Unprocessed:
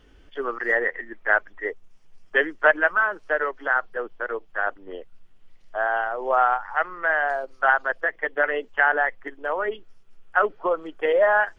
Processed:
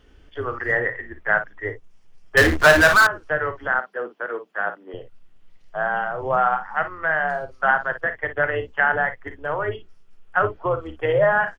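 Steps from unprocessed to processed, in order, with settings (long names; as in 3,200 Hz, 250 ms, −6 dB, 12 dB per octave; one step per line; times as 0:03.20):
sub-octave generator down 2 octaves, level −1 dB
on a send: ambience of single reflections 39 ms −13 dB, 55 ms −12 dB
0:02.37–0:03.07: on the sum: power curve on the samples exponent 0.5
0:03.79–0:04.94: Butterworth high-pass 190 Hz 36 dB per octave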